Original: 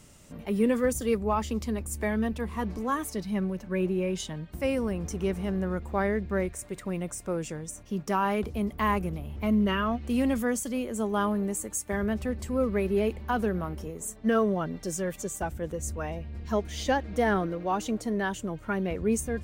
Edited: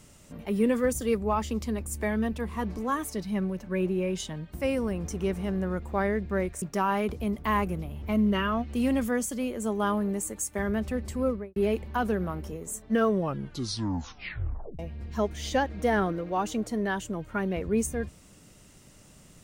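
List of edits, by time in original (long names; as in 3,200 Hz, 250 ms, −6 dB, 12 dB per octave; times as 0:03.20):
0:06.62–0:07.96: remove
0:12.56–0:12.90: fade out and dull
0:14.45: tape stop 1.68 s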